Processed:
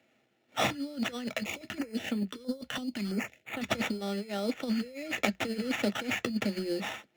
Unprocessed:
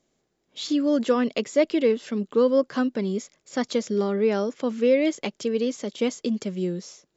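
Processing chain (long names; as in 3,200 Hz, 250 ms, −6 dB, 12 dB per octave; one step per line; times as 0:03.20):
dynamic equaliser 4,700 Hz, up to +5 dB, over −51 dBFS, Q 2.1
sample-rate reduction 4,600 Hz, jitter 0%
high-pass filter 110 Hz 24 dB per octave
compressor whose output falls as the input rises −28 dBFS, ratio −0.5
parametric band 3,400 Hz +3.5 dB 0.97 octaves
notch filter 980 Hz, Q 14
convolution reverb RT60 0.10 s, pre-delay 3 ms, DRR 13 dB
0:01.28–0:03.69: notch on a step sequencer 6 Hz 340–5,400 Hz
level −8 dB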